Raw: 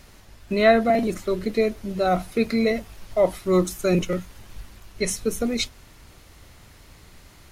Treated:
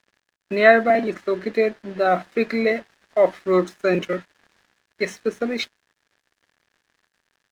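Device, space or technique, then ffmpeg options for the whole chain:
pocket radio on a weak battery: -af "highpass=270,lowpass=3300,aeval=exprs='sgn(val(0))*max(abs(val(0))-0.00335,0)':c=same,equalizer=f=1700:t=o:w=0.31:g=9.5,volume=1.41"

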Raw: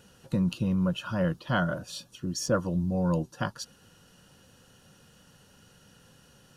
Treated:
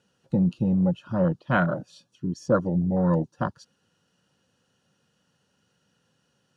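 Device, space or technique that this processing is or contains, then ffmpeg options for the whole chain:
over-cleaned archive recording: -af "highpass=110,lowpass=7600,afwtdn=0.0251,volume=1.78"

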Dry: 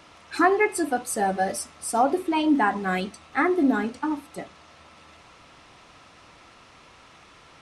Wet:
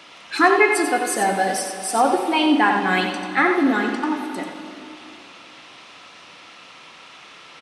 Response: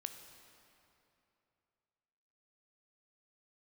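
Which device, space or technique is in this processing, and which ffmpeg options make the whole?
PA in a hall: -filter_complex "[0:a]highpass=180,equalizer=f=3100:t=o:w=1.6:g=8,aecho=1:1:90:0.447[s0];[1:a]atrim=start_sample=2205[s1];[s0][s1]afir=irnorm=-1:irlink=0,volume=2"

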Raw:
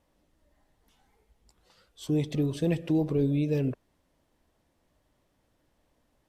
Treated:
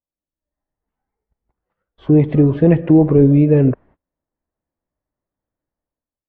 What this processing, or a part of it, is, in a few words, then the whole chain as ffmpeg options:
action camera in a waterproof case: -af "agate=range=0.0355:threshold=0.00141:ratio=16:detection=peak,lowpass=f=1900:w=0.5412,lowpass=f=1900:w=1.3066,dynaudnorm=f=120:g=9:m=4.47,volume=1.33" -ar 22050 -c:a aac -b:a 48k

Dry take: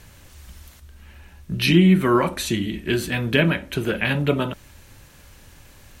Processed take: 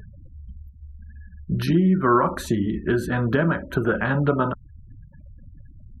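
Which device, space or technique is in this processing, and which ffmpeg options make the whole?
upward and downward compression: -af "acompressor=mode=upward:threshold=0.01:ratio=2.5,acompressor=threshold=0.0891:ratio=3,afftfilt=real='re*gte(hypot(re,im),0.0126)':imag='im*gte(hypot(re,im),0.0126)':win_size=1024:overlap=0.75,highshelf=f=1800:t=q:w=3:g=-10,volume=1.5"

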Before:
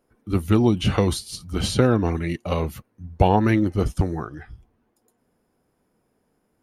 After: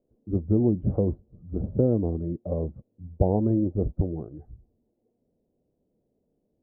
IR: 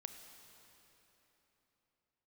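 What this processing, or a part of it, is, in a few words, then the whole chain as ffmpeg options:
under water: -af "lowpass=f=570:w=0.5412,lowpass=f=570:w=1.3066,equalizer=f=600:t=o:w=0.39:g=4.5,volume=0.631"

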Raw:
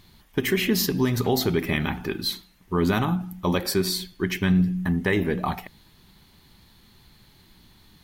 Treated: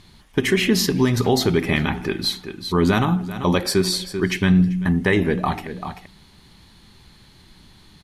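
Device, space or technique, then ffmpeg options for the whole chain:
ducked delay: -filter_complex "[0:a]asplit=3[s0][s1][s2];[s1]adelay=389,volume=0.376[s3];[s2]apad=whole_len=371392[s4];[s3][s4]sidechaincompress=threshold=0.0112:ratio=8:attack=16:release=157[s5];[s0][s5]amix=inputs=2:normalize=0,lowpass=f=11000:w=0.5412,lowpass=f=11000:w=1.3066,volume=1.68"

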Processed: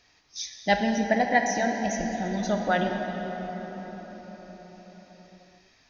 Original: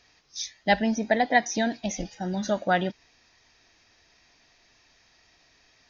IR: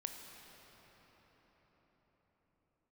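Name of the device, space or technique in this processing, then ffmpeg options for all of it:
cathedral: -filter_complex "[1:a]atrim=start_sample=2205[s0];[0:a][s0]afir=irnorm=-1:irlink=0,asettb=1/sr,asplit=3[s1][s2][s3];[s1]atrim=end=1.044[s4];[s2]atrim=start=1.04:end=2.14,asetpts=PTS-STARTPTS,afade=t=in:d=0.004:c=qsin,afade=t=out:st=1.096:d=0.004:c=qsin,equalizer=f=3600:w=6.5:g=-14[s5];[s3]atrim=start=2.136[s6];[s4][s5]acrossfade=d=0.004:c1=hsin:c2=qsin[s7];[s7][s6]acrossfade=d=0.004:c1=qsin:c2=hsin,volume=1.26"

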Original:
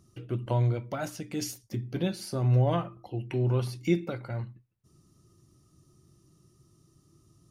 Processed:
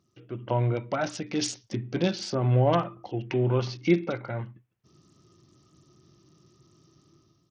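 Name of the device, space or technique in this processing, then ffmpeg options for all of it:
Bluetooth headset: -af "highpass=f=220:p=1,dynaudnorm=f=180:g=5:m=3.98,aresample=16000,aresample=44100,volume=0.531" -ar 48000 -c:a sbc -b:a 64k

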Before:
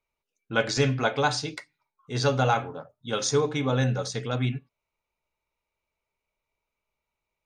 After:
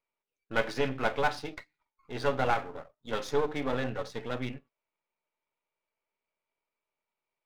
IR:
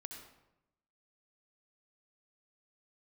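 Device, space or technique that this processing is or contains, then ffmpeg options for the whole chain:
crystal radio: -af "highpass=240,lowpass=2800,aeval=exprs='if(lt(val(0),0),0.251*val(0),val(0))':c=same"

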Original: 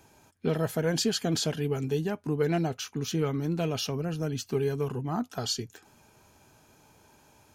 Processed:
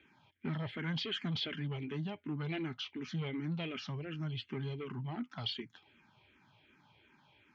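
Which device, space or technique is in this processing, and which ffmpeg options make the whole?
barber-pole phaser into a guitar amplifier: -filter_complex "[0:a]asplit=2[s0][s1];[s1]afreqshift=-2.7[s2];[s0][s2]amix=inputs=2:normalize=1,asoftclip=type=tanh:threshold=0.0501,highpass=84,equalizer=f=84:t=q:w=4:g=-5,equalizer=f=470:t=q:w=4:g=-10,equalizer=f=690:t=q:w=4:g=-8,equalizer=f=2100:t=q:w=4:g=9,equalizer=f=3200:t=q:w=4:g=8,lowpass=f=3800:w=0.5412,lowpass=f=3800:w=1.3066,volume=0.708"

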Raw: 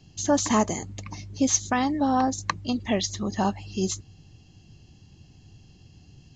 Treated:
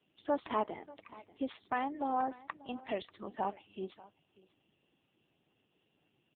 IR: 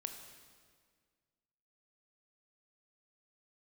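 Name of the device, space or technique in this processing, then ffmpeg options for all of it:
satellite phone: -af "highpass=390,lowpass=3400,aecho=1:1:589:0.0944,volume=0.447" -ar 8000 -c:a libopencore_amrnb -b:a 5900

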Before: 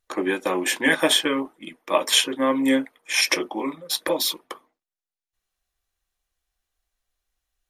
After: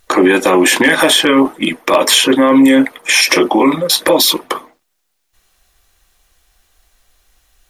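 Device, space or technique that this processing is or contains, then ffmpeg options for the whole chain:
loud club master: -af "acompressor=threshold=0.0708:ratio=3,asoftclip=type=hard:threshold=0.168,alimiter=level_in=17.8:limit=0.891:release=50:level=0:latency=1,volume=0.891"

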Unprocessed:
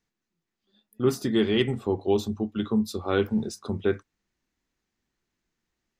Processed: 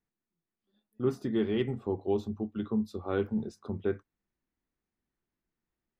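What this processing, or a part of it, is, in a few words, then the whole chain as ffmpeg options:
through cloth: -af "highshelf=f=2900:g=-15,volume=0.531"

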